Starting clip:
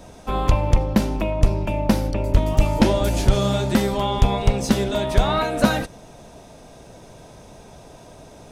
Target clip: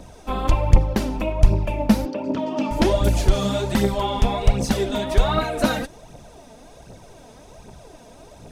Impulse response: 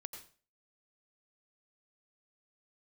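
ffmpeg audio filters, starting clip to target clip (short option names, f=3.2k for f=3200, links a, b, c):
-filter_complex "[0:a]asettb=1/sr,asplit=3[a][b][c];[a]atrim=end=2.054[d];[b]atrim=start=2.05:end=2.71,asetpts=PTS-STARTPTS,afade=t=in:d=0.004:c=qsin,afade=t=out:st=0.656:d=0.004:c=qsin,highpass=f=200:w=0.5412,highpass=f=200:w=1.3066,equalizer=f=260:t=q:w=4:g=9,equalizer=f=2.1k:t=q:w=4:g=-7,equalizer=f=3.9k:t=q:w=4:g=-4,lowpass=f=5.4k:w=0.5412,lowpass=f=5.4k:w=1.3066[e];[c]atrim=start=2.706[f];[d][e]acrossfade=d=0.004:c1=hsin:c2=qsin[g];[g][f]acrossfade=d=0.004:c1=qsin:c2=hsin,aphaser=in_gain=1:out_gain=1:delay=4.7:decay=0.54:speed=1.3:type=triangular,volume=-2.5dB"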